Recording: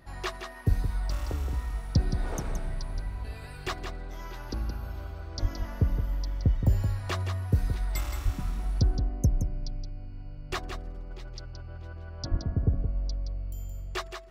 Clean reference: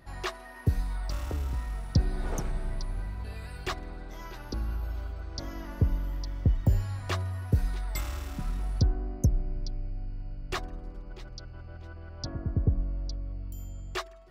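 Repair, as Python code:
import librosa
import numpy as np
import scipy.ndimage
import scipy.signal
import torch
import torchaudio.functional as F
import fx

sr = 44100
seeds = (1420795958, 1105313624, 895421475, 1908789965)

y = fx.fix_deplosive(x, sr, at_s=(0.68, 5.41, 8.24, 12.3))
y = fx.fix_echo_inverse(y, sr, delay_ms=171, level_db=-7.5)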